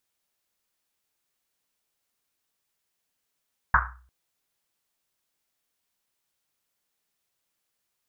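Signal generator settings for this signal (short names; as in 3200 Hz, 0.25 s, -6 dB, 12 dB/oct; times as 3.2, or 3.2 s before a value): Risset drum length 0.35 s, pitch 62 Hz, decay 0.58 s, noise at 1300 Hz, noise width 710 Hz, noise 70%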